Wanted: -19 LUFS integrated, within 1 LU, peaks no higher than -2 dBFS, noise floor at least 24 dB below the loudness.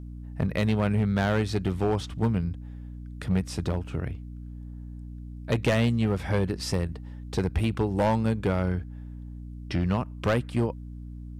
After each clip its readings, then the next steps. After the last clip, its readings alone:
clipped samples 1.6%; clipping level -18.0 dBFS; hum 60 Hz; highest harmonic 300 Hz; hum level -37 dBFS; loudness -27.5 LUFS; peak level -18.0 dBFS; loudness target -19.0 LUFS
-> clip repair -18 dBFS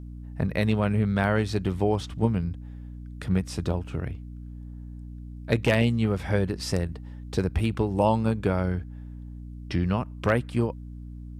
clipped samples 0.0%; hum 60 Hz; highest harmonic 300 Hz; hum level -36 dBFS
-> hum notches 60/120/180/240/300 Hz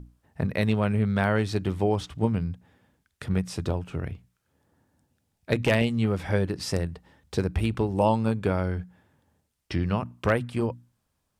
hum not found; loudness -27.0 LUFS; peak level -9.0 dBFS; loudness target -19.0 LUFS
-> trim +8 dB; peak limiter -2 dBFS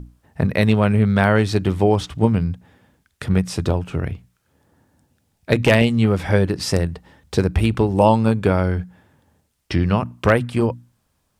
loudness -19.0 LUFS; peak level -2.0 dBFS; noise floor -69 dBFS

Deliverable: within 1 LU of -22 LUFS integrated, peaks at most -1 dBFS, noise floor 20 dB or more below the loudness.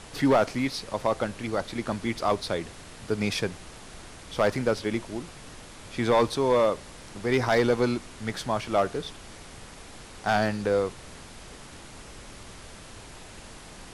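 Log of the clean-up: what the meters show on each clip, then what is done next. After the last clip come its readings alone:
clipped samples 0.4%; clipping level -14.5 dBFS; noise floor -46 dBFS; noise floor target -47 dBFS; loudness -27.0 LUFS; peak level -14.5 dBFS; loudness target -22.0 LUFS
-> clip repair -14.5 dBFS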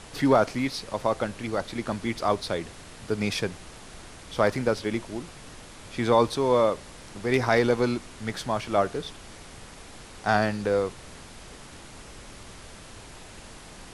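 clipped samples 0.0%; noise floor -46 dBFS; noise floor target -47 dBFS
-> noise print and reduce 6 dB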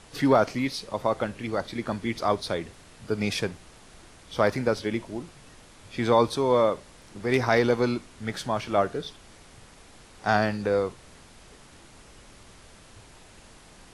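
noise floor -52 dBFS; loudness -26.5 LUFS; peak level -7.0 dBFS; loudness target -22.0 LUFS
-> trim +4.5 dB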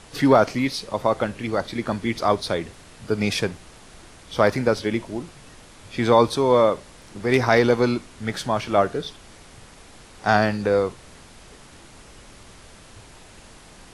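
loudness -22.0 LUFS; peak level -2.5 dBFS; noise floor -47 dBFS

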